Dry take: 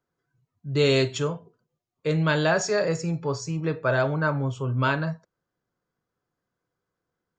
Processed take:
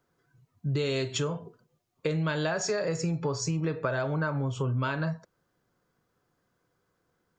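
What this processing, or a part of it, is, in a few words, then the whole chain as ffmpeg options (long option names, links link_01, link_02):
serial compression, peaks first: -af "acompressor=threshold=-30dB:ratio=6,acompressor=threshold=-37dB:ratio=2,volume=8dB"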